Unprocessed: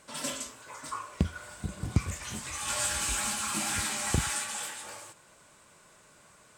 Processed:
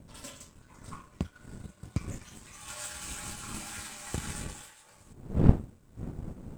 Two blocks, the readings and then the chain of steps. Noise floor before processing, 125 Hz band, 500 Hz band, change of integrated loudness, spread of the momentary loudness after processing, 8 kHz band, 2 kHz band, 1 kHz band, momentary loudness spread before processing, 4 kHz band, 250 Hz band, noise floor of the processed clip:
−59 dBFS, +3.5 dB, +1.0 dB, −2.5 dB, 23 LU, −10.5 dB, −10.0 dB, −8.5 dB, 12 LU, −10.5 dB, +3.5 dB, −59 dBFS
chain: wind on the microphone 180 Hz −30 dBFS
bit reduction 10 bits
power curve on the samples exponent 1.4

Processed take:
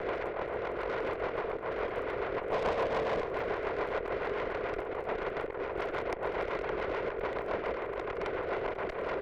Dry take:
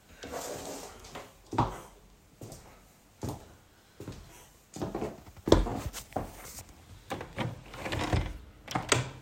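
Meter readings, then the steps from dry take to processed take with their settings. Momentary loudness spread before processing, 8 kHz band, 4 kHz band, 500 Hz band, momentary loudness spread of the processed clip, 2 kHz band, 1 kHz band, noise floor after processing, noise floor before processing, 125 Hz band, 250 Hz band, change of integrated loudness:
20 LU, below −20 dB, −7.5 dB, +6.0 dB, 4 LU, +4.0 dB, +2.5 dB, −39 dBFS, −60 dBFS, −11.0 dB, −4.5 dB, 0.0 dB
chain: compressor on every frequency bin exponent 0.2
reverb reduction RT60 1.1 s
single-sideband voice off tune +79 Hz 260–2,100 Hz
compressor whose output falls as the input rises −28 dBFS, ratio −1
surface crackle 18 per second −41 dBFS
gain on a spectral selection 0:02.52–0:03.26, 430–1,200 Hz +7 dB
tube saturation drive 25 dB, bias 0.65
on a send: single-tap delay 492 ms −14 dB
on the sum: rotating-speaker cabinet horn 7 Hz

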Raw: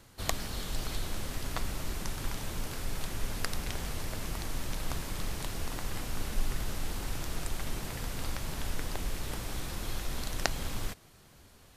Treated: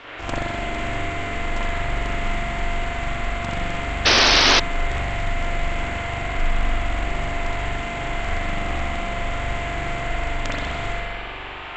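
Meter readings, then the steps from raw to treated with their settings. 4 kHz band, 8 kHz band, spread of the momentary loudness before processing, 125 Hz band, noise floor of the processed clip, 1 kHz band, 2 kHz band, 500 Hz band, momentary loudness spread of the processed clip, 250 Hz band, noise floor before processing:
+17.5 dB, +7.0 dB, 3 LU, +9.5 dB, −33 dBFS, +17.0 dB, +18.5 dB, +16.0 dB, 11 LU, +10.5 dB, −57 dBFS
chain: samples sorted by size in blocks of 128 samples
speech leveller 0.5 s
Chebyshev low-pass filter 7,600 Hz, order 10
parametric band 68 Hz +2.5 dB 2.7 octaves
delay with a high-pass on its return 64 ms, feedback 60%, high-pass 1,800 Hz, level −3.5 dB
noise in a band 290–3,000 Hz −44 dBFS
spring reverb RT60 2.1 s, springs 42 ms, chirp 55 ms, DRR −8.5 dB
sound drawn into the spectrogram noise, 0:04.05–0:04.60, 220–5,600 Hz −16 dBFS
highs frequency-modulated by the lows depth 0.34 ms
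level +1 dB

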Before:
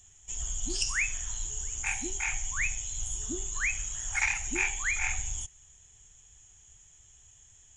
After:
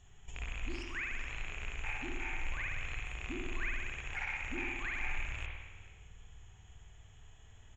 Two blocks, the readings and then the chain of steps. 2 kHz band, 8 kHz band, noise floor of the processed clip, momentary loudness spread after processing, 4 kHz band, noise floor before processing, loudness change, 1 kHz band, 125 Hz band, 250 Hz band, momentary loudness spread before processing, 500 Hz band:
−6.5 dB, −26.5 dB, −57 dBFS, 21 LU, −9.0 dB, −58 dBFS, −9.0 dB, −4.0 dB, −2.5 dB, −2.5 dB, 7 LU, −2.5 dB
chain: loose part that buzzes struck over −43 dBFS, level −21 dBFS
parametric band 8,000 Hz +8 dB 0.66 octaves
downward compressor 12 to 1, threshold −36 dBFS, peak gain reduction 15.5 dB
high-frequency loss of the air 360 metres
single-tap delay 432 ms −18.5 dB
spring reverb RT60 1.3 s, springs 53 ms, chirp 65 ms, DRR −1 dB
level +4.5 dB

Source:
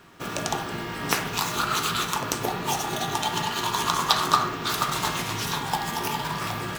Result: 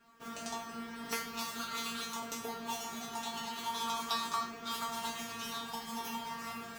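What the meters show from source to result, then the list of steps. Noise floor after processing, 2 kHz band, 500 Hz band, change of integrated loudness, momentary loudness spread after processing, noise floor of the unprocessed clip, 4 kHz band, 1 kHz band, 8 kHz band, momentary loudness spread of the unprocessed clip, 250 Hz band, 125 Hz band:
−47 dBFS, −13.5 dB, −13.5 dB, −12.5 dB, 6 LU, −33 dBFS, −12.0 dB, −12.5 dB, −12.0 dB, 7 LU, −10.5 dB, −23.5 dB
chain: tuned comb filter 230 Hz, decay 0.34 s, harmonics all, mix 100%
level +1.5 dB

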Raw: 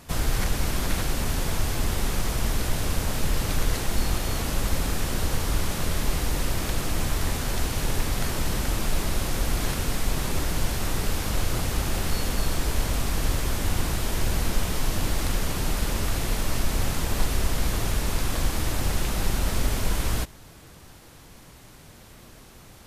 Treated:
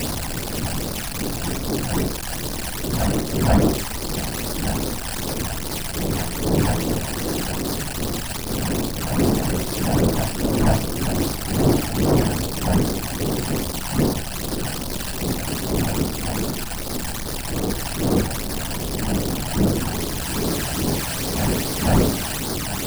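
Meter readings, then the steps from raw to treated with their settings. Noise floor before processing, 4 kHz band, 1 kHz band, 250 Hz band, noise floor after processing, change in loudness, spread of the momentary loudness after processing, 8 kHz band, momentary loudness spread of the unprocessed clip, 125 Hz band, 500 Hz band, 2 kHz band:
−48 dBFS, +3.5 dB, +5.0 dB, +10.5 dB, −28 dBFS, +5.0 dB, 7 LU, +4.0 dB, 1 LU, +5.0 dB, +9.0 dB, +2.0 dB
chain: sign of each sample alone
wind on the microphone 320 Hz −20 dBFS
all-pass phaser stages 12, 2.5 Hz, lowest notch 350–2,800 Hz
low-shelf EQ 110 Hz −9.5 dB
flutter between parallel walls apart 8 metres, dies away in 0.26 s
soft clipping −8 dBFS, distortion −19 dB
backwards echo 487 ms −5.5 dB

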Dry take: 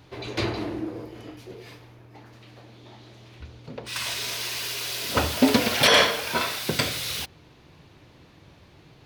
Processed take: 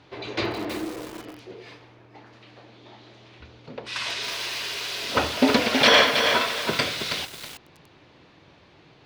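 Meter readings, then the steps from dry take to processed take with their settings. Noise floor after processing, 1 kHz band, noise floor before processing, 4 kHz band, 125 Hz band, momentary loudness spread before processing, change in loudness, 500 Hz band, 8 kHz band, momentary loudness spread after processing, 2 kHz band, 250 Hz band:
−55 dBFS, +2.5 dB, −54 dBFS, +1.5 dB, −5.0 dB, 23 LU, +1.0 dB, +2.0 dB, −3.5 dB, 23 LU, +2.5 dB, 0.0 dB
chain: low-pass filter 4,900 Hz 12 dB per octave
low-shelf EQ 150 Hz −12 dB
feedback echo at a low word length 322 ms, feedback 35%, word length 6 bits, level −5.5 dB
level +2 dB

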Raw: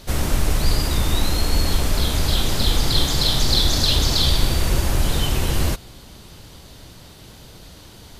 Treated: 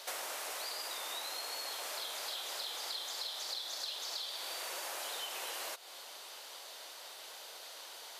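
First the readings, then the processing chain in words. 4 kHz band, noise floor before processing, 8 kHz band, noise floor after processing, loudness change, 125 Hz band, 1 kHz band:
−17.0 dB, −43 dBFS, −14.0 dB, −50 dBFS, −19.5 dB, below −40 dB, −14.0 dB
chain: high-pass filter 560 Hz 24 dB per octave
downward compressor 12 to 1, threshold −36 dBFS, peak gain reduction 20 dB
level −2 dB

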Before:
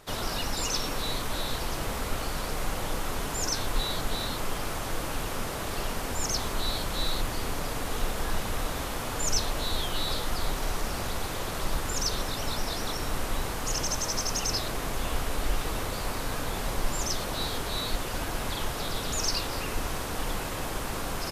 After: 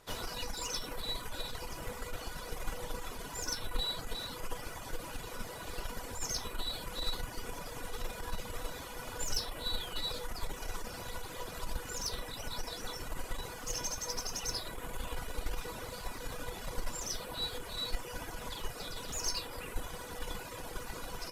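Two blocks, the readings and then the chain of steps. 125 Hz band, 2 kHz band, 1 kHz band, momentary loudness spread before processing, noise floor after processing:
−11.0 dB, −9.0 dB, −10.0 dB, 5 LU, −45 dBFS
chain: reverb reduction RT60 1.7 s
harmonic generator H 4 −16 dB, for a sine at −14 dBFS
tuned comb filter 490 Hz, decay 0.22 s, harmonics all, mix 80%
level +4.5 dB

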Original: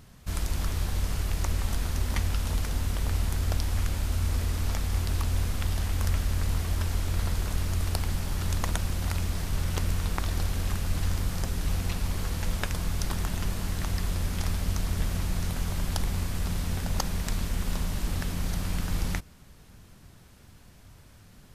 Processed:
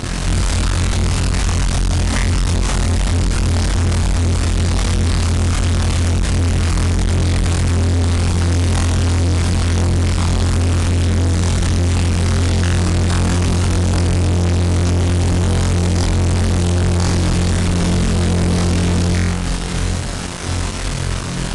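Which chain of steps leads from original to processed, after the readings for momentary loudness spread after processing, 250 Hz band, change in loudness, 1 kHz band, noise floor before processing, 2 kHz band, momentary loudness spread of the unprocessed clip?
3 LU, +17.5 dB, +14.0 dB, +13.5 dB, −53 dBFS, +13.5 dB, 3 LU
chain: downward compressor 5 to 1, threshold −40 dBFS, peak gain reduction 17 dB
flutter between parallel walls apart 3.9 metres, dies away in 0.84 s
fuzz pedal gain 46 dB, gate −51 dBFS
AAC 96 kbit/s 22,050 Hz

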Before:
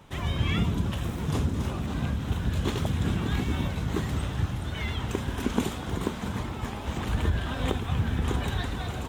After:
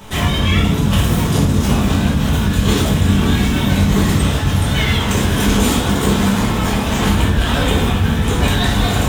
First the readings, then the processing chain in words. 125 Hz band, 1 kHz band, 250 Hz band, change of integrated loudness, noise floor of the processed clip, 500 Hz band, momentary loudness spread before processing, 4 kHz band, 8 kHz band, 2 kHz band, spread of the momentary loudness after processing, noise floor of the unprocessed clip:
+13.0 dB, +14.5 dB, +15.0 dB, +14.0 dB, −18 dBFS, +14.0 dB, 4 LU, +17.0 dB, +19.5 dB, +15.5 dB, 2 LU, −35 dBFS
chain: high-shelf EQ 4,300 Hz +9 dB
in parallel at +2 dB: compressor whose output falls as the input rises −31 dBFS
on the sum: rectangular room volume 170 cubic metres, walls mixed, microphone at 1.5 metres
level +2 dB

